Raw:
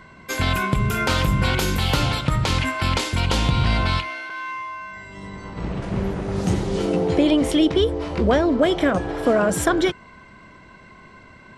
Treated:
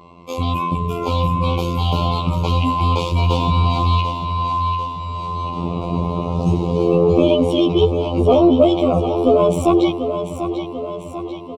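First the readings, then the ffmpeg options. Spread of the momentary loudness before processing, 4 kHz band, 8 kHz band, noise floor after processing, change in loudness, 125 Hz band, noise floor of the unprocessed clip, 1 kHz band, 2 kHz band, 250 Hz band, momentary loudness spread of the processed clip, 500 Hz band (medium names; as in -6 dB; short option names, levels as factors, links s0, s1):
12 LU, -1.0 dB, no reading, -31 dBFS, +3.0 dB, +4.5 dB, -47 dBFS, +6.5 dB, -9.5 dB, +3.5 dB, 11 LU, +6.0 dB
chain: -af "equalizer=f=110:w=0.3:g=4,dynaudnorm=f=250:g=17:m=3.76,afftfilt=real='hypot(re,im)*cos(PI*b)':imag='0':win_size=2048:overlap=0.75,acontrast=85,asuperstop=centerf=1700:order=8:qfactor=1.5,bass=f=250:g=-7,treble=f=4000:g=-13,aecho=1:1:742|1484|2226|2968|3710|4452|5194:0.355|0.199|0.111|0.0623|0.0349|0.0195|0.0109"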